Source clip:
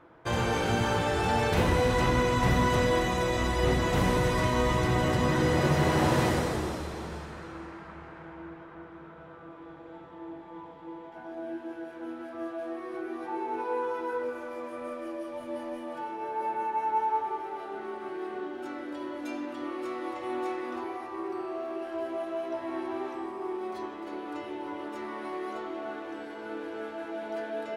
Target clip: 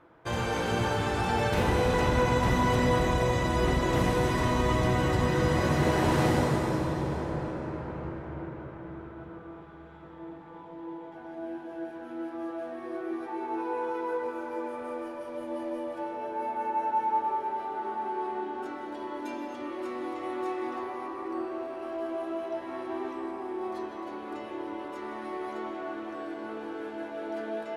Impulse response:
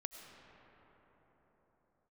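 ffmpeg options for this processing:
-filter_complex "[0:a]asettb=1/sr,asplit=3[a][b][c];[a]atrim=end=9.624[d];[b]atrim=start=9.62:end=10.03,asetpts=PTS-STARTPTS,afade=t=in:d=0.004:c=qsin,afade=t=out:st=0.406:d=0.004:c=qsin,highpass=1.1k[e];[c]atrim=start=10.026[f];[d][e]acrossfade=d=0.004:c1=hsin:c2=qsin[g];[g][f]acrossfade=d=0.004:c1=qsin:c2=hsin[h];[1:a]atrim=start_sample=2205,asetrate=28224,aresample=44100[i];[h][i]afir=irnorm=-1:irlink=0"

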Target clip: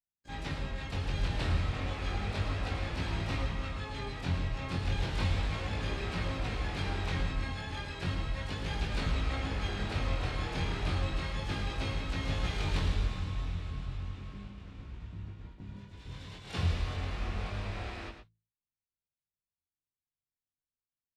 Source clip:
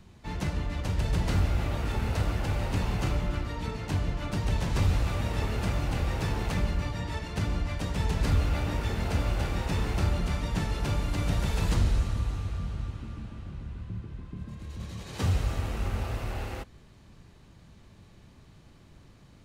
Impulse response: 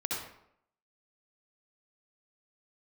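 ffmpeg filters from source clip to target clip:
-filter_complex "[0:a]agate=range=-47dB:threshold=-40dB:ratio=16:detection=peak,lowpass=f=4.8k:w=0.5412,lowpass=f=4.8k:w=1.3066,highshelf=f=2.1k:g=9,bandreject=f=60:t=h:w=6,bandreject=f=120:t=h:w=6,bandreject=f=180:t=h:w=6,bandreject=f=240:t=h:w=6,asplit=2[a][b];[b]asetrate=88200,aresample=44100,atempo=0.5,volume=-13dB[c];[a][c]amix=inputs=2:normalize=0,flanger=delay=16.5:depth=5:speed=0.36,asplit=2[d][e];[e]aecho=0:1:101:0.376[f];[d][f]amix=inputs=2:normalize=0,asetrate=40517,aresample=44100,volume=-3dB"

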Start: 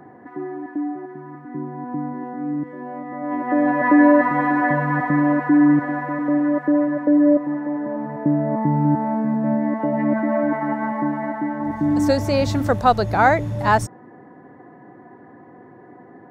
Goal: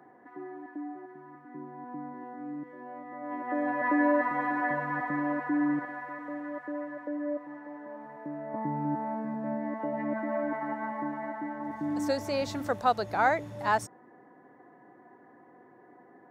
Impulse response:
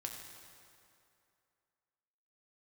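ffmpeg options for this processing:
-af "asetnsamples=n=441:p=0,asendcmd='5.85 highpass f 1100;8.54 highpass f 370',highpass=f=440:p=1,volume=-8.5dB"

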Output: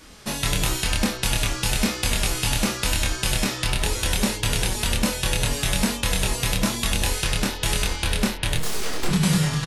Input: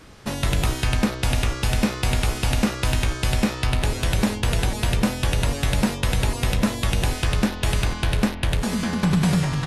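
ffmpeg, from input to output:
-filter_complex "[0:a]highshelf=f=2.8k:g=10,asettb=1/sr,asplit=3[a][b][c];[a]atrim=end=8.554[d];[b]atrim=start=8.55:end=9.09,asetpts=PTS-STARTPTS,afade=t=in:d=0.004:c=qsin,afade=t=out:st=0.536:d=0.004:c=qsin,aeval=exprs='abs(val(0))':c=same[e];[c]atrim=start=9.086[f];[d][e]acrossfade=d=0.004:c1=hsin:c2=qsin[g];[g][f]acrossfade=d=0.004:c1=qsin:c2=hsin,flanger=delay=3.3:depth=3.9:regen=-39:speed=1:shape=triangular,asplit=2[h][i];[i]adelay=26,volume=-3dB[j];[h][j]amix=inputs=2:normalize=0"

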